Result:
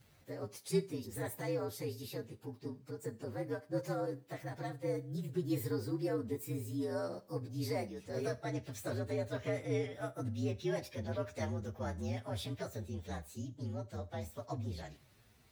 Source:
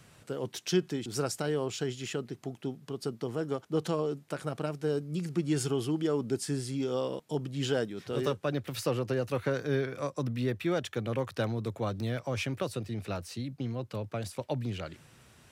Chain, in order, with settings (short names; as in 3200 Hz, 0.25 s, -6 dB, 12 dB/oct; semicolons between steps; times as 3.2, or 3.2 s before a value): inharmonic rescaling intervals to 117%; Schroeder reverb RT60 0.37 s, combs from 28 ms, DRR 16.5 dB; gain -4.5 dB